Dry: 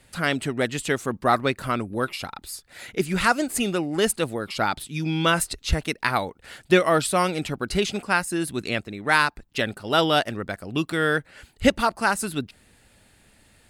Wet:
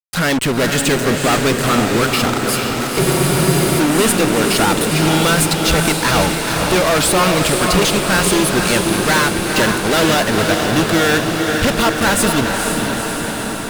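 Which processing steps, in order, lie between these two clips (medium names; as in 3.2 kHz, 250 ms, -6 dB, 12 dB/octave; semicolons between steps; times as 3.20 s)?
fuzz box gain 37 dB, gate -36 dBFS; echo that smears into a reverb 474 ms, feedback 73%, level -4 dB; spectral freeze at 3.03 s, 0.76 s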